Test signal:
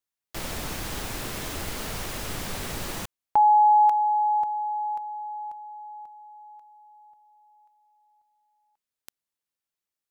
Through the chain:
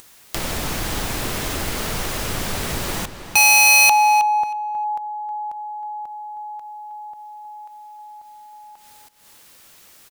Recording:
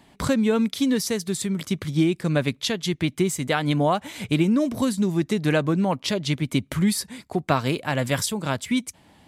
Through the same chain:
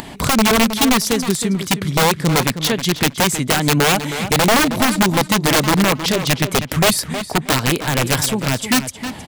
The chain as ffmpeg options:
-filter_complex "[0:a]acompressor=mode=upward:threshold=0.0355:ratio=2.5:attack=7.2:release=177:knee=2.83:detection=peak,aeval=exprs='(mod(6.31*val(0)+1,2)-1)/6.31':c=same,asplit=2[s0][s1];[s1]adelay=316,lowpass=f=4500:p=1,volume=0.316,asplit=2[s2][s3];[s3]adelay=316,lowpass=f=4500:p=1,volume=0.18,asplit=2[s4][s5];[s5]adelay=316,lowpass=f=4500:p=1,volume=0.18[s6];[s0][s2][s4][s6]amix=inputs=4:normalize=0,volume=2.24"

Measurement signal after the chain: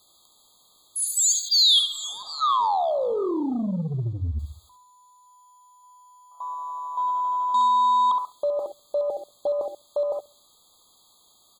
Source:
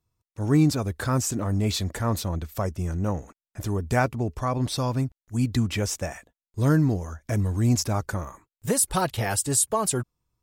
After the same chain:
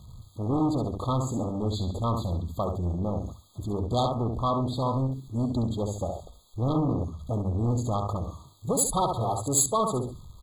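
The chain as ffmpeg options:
-af "aeval=exprs='val(0)+0.5*0.0168*sgn(val(0))':c=same,aecho=1:1:68|136|204|272|340:0.501|0.195|0.0762|0.0297|0.0116,afwtdn=0.0447,aemphasis=mode=reproduction:type=50kf,asoftclip=type=tanh:threshold=0.0891,asuperstop=centerf=1500:order=20:qfactor=3.2,tiltshelf=f=1300:g=-7,bandreject=f=50:t=h:w=6,bandreject=f=100:t=h:w=6,bandreject=f=150:t=h:w=6,afftfilt=real='re*eq(mod(floor(b*sr/1024/1600),2),0)':imag='im*eq(mod(floor(b*sr/1024/1600),2),0)':win_size=1024:overlap=0.75,volume=2"

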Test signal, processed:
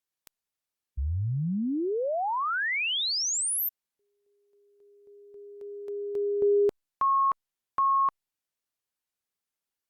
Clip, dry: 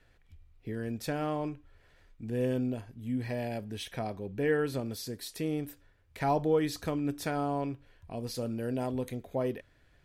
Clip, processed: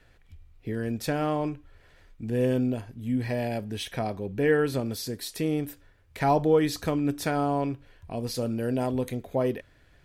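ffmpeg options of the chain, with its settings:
-af "volume=1.88" -ar 48000 -c:a libopus -b:a 96k

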